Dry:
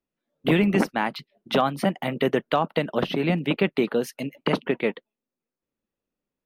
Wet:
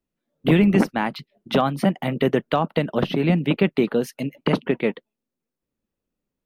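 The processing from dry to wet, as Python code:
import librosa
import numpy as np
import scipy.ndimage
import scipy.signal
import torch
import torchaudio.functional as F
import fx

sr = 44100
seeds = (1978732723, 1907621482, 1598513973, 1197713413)

y = fx.low_shelf(x, sr, hz=250.0, db=8.0)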